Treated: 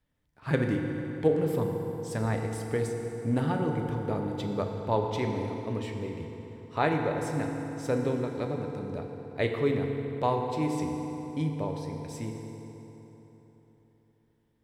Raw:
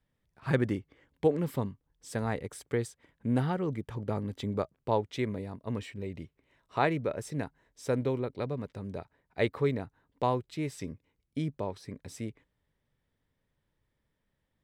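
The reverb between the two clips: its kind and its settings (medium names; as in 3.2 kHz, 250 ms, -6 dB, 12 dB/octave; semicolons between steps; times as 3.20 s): FDN reverb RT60 3.8 s, high-frequency decay 0.65×, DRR 2 dB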